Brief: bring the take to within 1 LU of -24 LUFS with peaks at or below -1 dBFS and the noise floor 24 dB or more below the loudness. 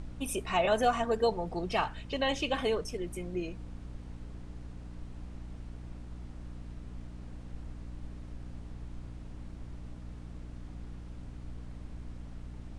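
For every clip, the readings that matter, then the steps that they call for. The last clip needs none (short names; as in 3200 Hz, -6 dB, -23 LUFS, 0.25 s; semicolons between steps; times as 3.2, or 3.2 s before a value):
hum 60 Hz; harmonics up to 300 Hz; hum level -43 dBFS; noise floor -46 dBFS; noise floor target -60 dBFS; loudness -35.5 LUFS; peak -15.0 dBFS; loudness target -24.0 LUFS
-> notches 60/120/180/240/300 Hz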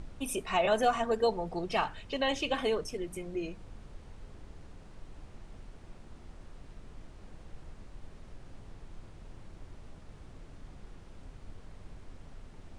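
hum none; noise floor -52 dBFS; noise floor target -56 dBFS
-> noise print and reduce 6 dB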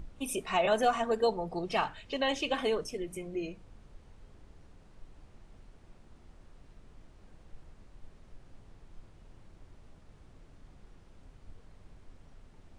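noise floor -58 dBFS; loudness -31.5 LUFS; peak -16.0 dBFS; loudness target -24.0 LUFS
-> gain +7.5 dB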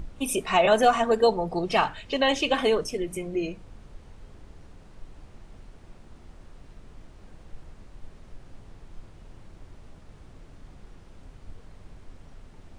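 loudness -24.0 LUFS; peak -8.5 dBFS; noise floor -51 dBFS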